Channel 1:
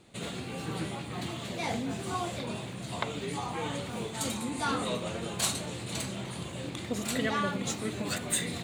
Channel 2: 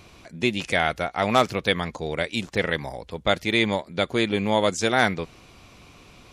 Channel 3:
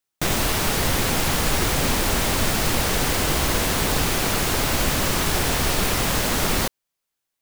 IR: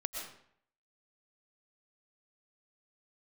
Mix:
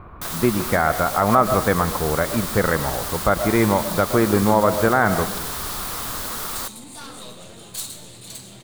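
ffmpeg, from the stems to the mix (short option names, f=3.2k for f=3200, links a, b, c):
-filter_complex "[0:a]aeval=exprs='clip(val(0),-1,0.0168)':c=same,adelay=2350,volume=-10dB,asplit=2[a][b];[b]volume=-5.5dB[c];[1:a]lowpass=f=1.6k:w=0.5412,lowpass=f=1.6k:w=1.3066,lowshelf=f=82:g=11,volume=1dB,asplit=2[d][e];[e]volume=-4dB[f];[2:a]volume=-15dB[g];[d][g]amix=inputs=2:normalize=0,equalizer=f=1.2k:t=o:w=0.96:g=12.5,alimiter=limit=-9.5dB:level=0:latency=1:release=89,volume=0dB[h];[3:a]atrim=start_sample=2205[i];[c][f]amix=inputs=2:normalize=0[j];[j][i]afir=irnorm=-1:irlink=0[k];[a][h][k]amix=inputs=3:normalize=0,aexciter=amount=3.2:drive=2.7:freq=3.5k"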